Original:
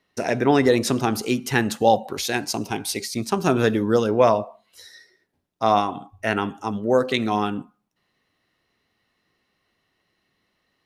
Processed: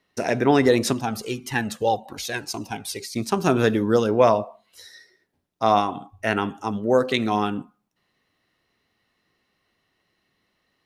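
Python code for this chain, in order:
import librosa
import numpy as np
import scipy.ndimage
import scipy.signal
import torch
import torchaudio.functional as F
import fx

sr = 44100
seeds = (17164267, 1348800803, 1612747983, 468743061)

y = fx.comb_cascade(x, sr, direction='falling', hz=1.8, at=(0.93, 3.16))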